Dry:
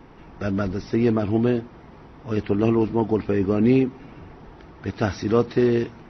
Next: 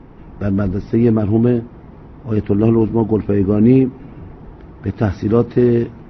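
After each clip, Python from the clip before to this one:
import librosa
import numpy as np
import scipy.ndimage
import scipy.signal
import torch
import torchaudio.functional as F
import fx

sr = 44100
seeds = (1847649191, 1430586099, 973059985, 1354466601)

y = fx.lowpass(x, sr, hz=2400.0, slope=6)
y = fx.low_shelf(y, sr, hz=390.0, db=8.5)
y = y * 10.0 ** (1.0 / 20.0)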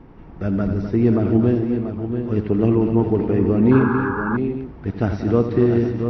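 y = fx.echo_multitap(x, sr, ms=(85, 186, 255, 653, 686, 813), db=(-10.5, -12.5, -9.5, -17.0, -8.5, -14.5))
y = fx.spec_paint(y, sr, seeds[0], shape='noise', start_s=3.71, length_s=0.66, low_hz=790.0, high_hz=1700.0, level_db=-23.0)
y = y * 10.0 ** (-4.0 / 20.0)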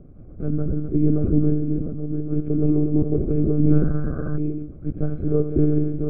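y = fx.lpc_monotone(x, sr, seeds[1], pitch_hz=150.0, order=8)
y = scipy.signal.lfilter(np.full(47, 1.0 / 47), 1.0, y)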